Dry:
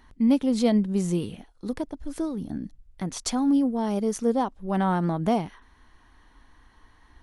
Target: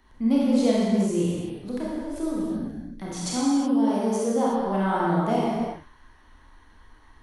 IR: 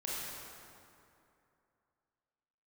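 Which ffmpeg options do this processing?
-filter_complex "[0:a]asettb=1/sr,asplit=3[a][b][c];[a]atrim=end=3.074[d];[b]atrim=start=3.07:end=4.51,asetpts=PTS-STARTPTS,afade=t=in:d=0.004:c=qsin,afade=t=out:st=1.436:d=0.004:c=qsin,highpass=f=88:p=1[e];[c]atrim=start=4.506[f];[d][e]acrossfade=d=0.004:c1=hsin:c2=qsin[g];[g][f]acrossfade=d=0.004:c1=qsin:c2=hsin,acrossover=split=180|850|2400[h][i][j][k];[h]asoftclip=type=tanh:threshold=-35.5dB[l];[l][i][j][k]amix=inputs=4:normalize=0[m];[1:a]atrim=start_sample=2205,afade=t=out:st=0.43:d=0.01,atrim=end_sample=19404[n];[m][n]afir=irnorm=-1:irlink=0"

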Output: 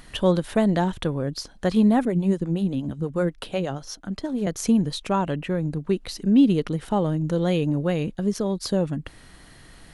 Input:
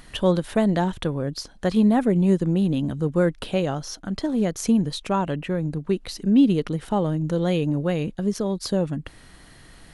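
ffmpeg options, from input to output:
-filter_complex "[0:a]asettb=1/sr,asplit=3[a][b][c];[a]atrim=end=2.054[d];[b]atrim=start=2.05:end=4.47,asetpts=PTS-STARTPTS,afade=t=in:d=0.004:c=qsin,afade=t=out:st=2.416:d=0.004:c=qsin,acrossover=split=410[e][f];[e]aeval=exprs='val(0)*(1-0.7/2+0.7/2*cos(2*PI*8.3*n/s))':c=same[g];[f]aeval=exprs='val(0)*(1-0.7/2-0.7/2*cos(2*PI*8.3*n/s))':c=same[h];[g][h]amix=inputs=2:normalize=0[i];[c]atrim=start=4.466[j];[d][i]acrossfade=d=0.004:c1=hsin:c2=qsin[k];[k][j]acrossfade=d=0.004:c1=qsin:c2=hsin"

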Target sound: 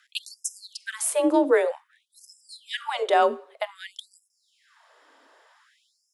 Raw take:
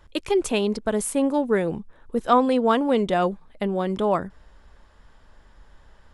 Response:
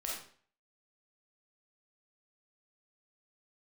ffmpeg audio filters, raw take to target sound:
-filter_complex "[0:a]afreqshift=34,bandreject=f=50:t=h:w=6,bandreject=f=100:t=h:w=6,bandreject=f=150:t=h:w=6,bandreject=f=200:t=h:w=6,bandreject=f=250:t=h:w=6,bandreject=f=300:t=h:w=6,bandreject=f=350:t=h:w=6,bandreject=f=400:t=h:w=6,asplit=2[a][b];[1:a]atrim=start_sample=2205[c];[b][c]afir=irnorm=-1:irlink=0,volume=-17dB[d];[a][d]amix=inputs=2:normalize=0,afftfilt=real='re*gte(b*sr/1024,240*pow(5100/240,0.5+0.5*sin(2*PI*0.53*pts/sr)))':imag='im*gte(b*sr/1024,240*pow(5100/240,0.5+0.5*sin(2*PI*0.53*pts/sr)))':win_size=1024:overlap=0.75,volume=2dB"

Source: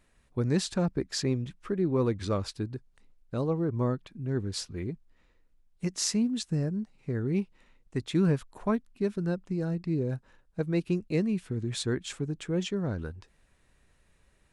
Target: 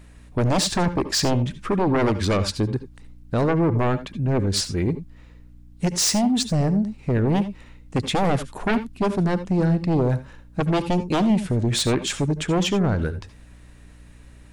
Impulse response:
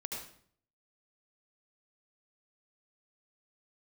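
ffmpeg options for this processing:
-filter_complex "[0:a]aeval=exprs='val(0)+0.001*(sin(2*PI*60*n/s)+sin(2*PI*2*60*n/s)/2+sin(2*PI*3*60*n/s)/3+sin(2*PI*4*60*n/s)/4+sin(2*PI*5*60*n/s)/5)':c=same,aeval=exprs='0.266*sin(PI/2*5.01*val(0)/0.266)':c=same,asplit=2[a][b];[1:a]atrim=start_sample=2205,afade=t=out:st=0.14:d=0.01,atrim=end_sample=6615[c];[b][c]afir=irnorm=-1:irlink=0,volume=-5dB[d];[a][d]amix=inputs=2:normalize=0,volume=-7.5dB"

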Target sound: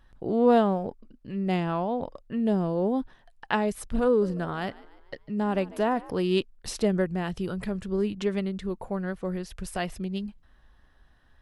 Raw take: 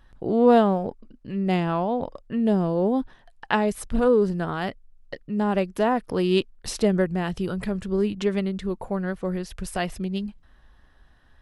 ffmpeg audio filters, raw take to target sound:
-filter_complex "[0:a]asettb=1/sr,asplit=3[a][b][c];[a]atrim=end=4.074[d];[b]atrim=start=4.07:end=6.11,asetpts=PTS-STARTPTS,afade=t=in:d=0.004:c=qsin,afade=t=out:st=2.036:d=0.004:c=qsin,asplit=5[e][f][g][h][i];[f]adelay=148,afreqshift=62,volume=-20.5dB[j];[g]adelay=296,afreqshift=124,volume=-26.9dB[k];[h]adelay=444,afreqshift=186,volume=-33.3dB[l];[i]adelay=592,afreqshift=248,volume=-39.6dB[m];[e][j][k][l][m]amix=inputs=5:normalize=0,atrim=end_sample=89964[n];[c]atrim=start=6.106[o];[d][n]acrossfade=d=0.004:c1=hsin:c2=qsin[p];[p][o]acrossfade=d=0.004:c1=qsin:c2=hsin,volume=-3.5dB"

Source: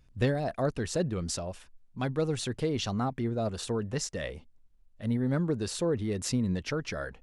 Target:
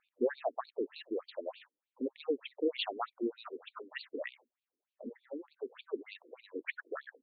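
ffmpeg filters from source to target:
-filter_complex "[0:a]asettb=1/sr,asplit=3[a][b][c];[a]atrim=end=5.094[d];[b]atrim=start=5.09:end=5.94,asetpts=PTS-STARTPTS,afade=t=in:d=0.004:c=qsin,afade=t=out:st=0.846:d=0.004:c=qsin,acompressor=threshold=-31dB:ratio=6[e];[c]atrim=start=5.936[f];[d][e]acrossfade=d=0.004:c1=hsin:c2=qsin[g];[g][f]acrossfade=d=0.004:c1=qsin:c2=hsin,afftfilt=real='re*between(b*sr/1024,330*pow(3300/330,0.5+0.5*sin(2*PI*3.3*pts/sr))/1.41,330*pow(3300/330,0.5+0.5*sin(2*PI*3.3*pts/sr))*1.41)':imag='im*between(b*sr/1024,330*pow(3300/330,0.5+0.5*sin(2*PI*3.3*pts/sr))/1.41,330*pow(3300/330,0.5+0.5*sin(2*PI*3.3*pts/sr))*1.41)':win_size=1024:overlap=0.75,volume=2dB"

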